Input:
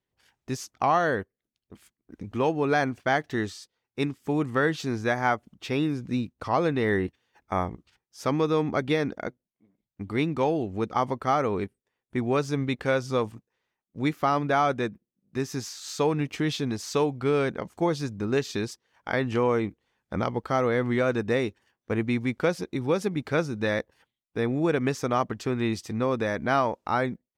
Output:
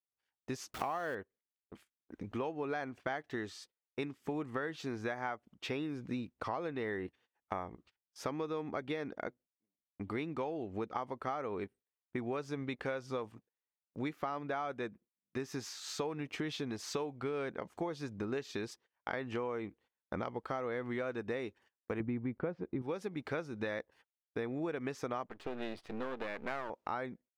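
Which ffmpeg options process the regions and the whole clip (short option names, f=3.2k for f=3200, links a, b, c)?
-filter_complex "[0:a]asettb=1/sr,asplit=3[a][b][c];[a]atrim=end=0.744[d];[b]atrim=start=0.74:end=1.15,asetpts=PTS-STARTPTS,afade=t=in:d=0.004:c=qsin,afade=t=out:st=0.406:d=0.004:c=qsin,aeval=exprs='val(0)+0.5*0.0168*sgn(val(0))':c=same,highshelf=f=6.6k:g=7[e];[c]atrim=start=1.146[f];[d][e]acrossfade=d=0.004:c1=hsin:c2=qsin[g];[g][f]acrossfade=d=0.004:c1=qsin:c2=hsin,asettb=1/sr,asplit=3[h][i][j];[h]atrim=end=22.004[k];[i]atrim=start=22:end=22.82,asetpts=PTS-STARTPTS,afade=t=in:d=0.004:c=qsin,afade=t=out:st=0.816:d=0.004:c=qsin,lowpass=1.9k,lowshelf=f=390:g=11.5[l];[j]atrim=start=22.816[m];[k][l]acrossfade=d=0.004:c1=hsin:c2=qsin[n];[n][m]acrossfade=d=0.004:c1=qsin:c2=hsin,asettb=1/sr,asplit=3[o][p][q];[o]atrim=end=25.264[r];[p]atrim=start=25.26:end=26.7,asetpts=PTS-STARTPTS,afade=t=in:d=0.004:c=qsin,afade=t=out:st=1.436:d=0.004:c=qsin,lowpass=f=4.2k:w=0.5412,lowpass=f=4.2k:w=1.3066,aeval=exprs='max(val(0),0)':c=same[s];[q]atrim=start=26.696[t];[r][s]acrossfade=d=0.004:c1=hsin:c2=qsin[u];[u][t]acrossfade=d=0.004:c1=qsin:c2=hsin,agate=range=-22dB:threshold=-52dB:ratio=16:detection=peak,bass=f=250:g=-7,treble=f=4k:g=-7,acompressor=threshold=-34dB:ratio=6,volume=-1dB"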